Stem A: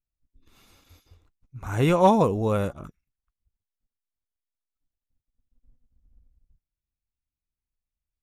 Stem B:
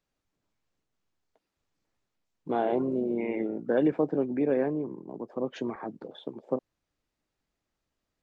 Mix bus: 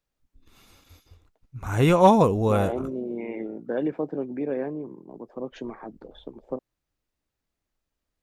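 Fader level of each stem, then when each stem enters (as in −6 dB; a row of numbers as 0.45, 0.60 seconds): +2.0, −2.5 decibels; 0.00, 0.00 seconds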